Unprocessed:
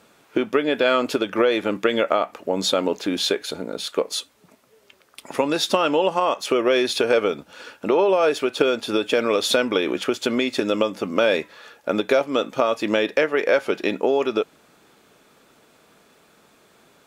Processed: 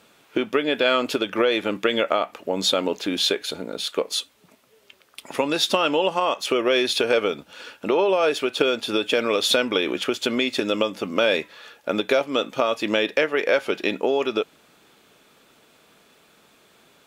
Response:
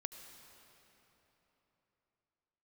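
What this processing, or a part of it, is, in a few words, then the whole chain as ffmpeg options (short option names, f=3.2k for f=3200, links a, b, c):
presence and air boost: -af "equalizer=f=3.1k:t=o:w=1.1:g=5,highshelf=f=11k:g=4.5,volume=-2dB"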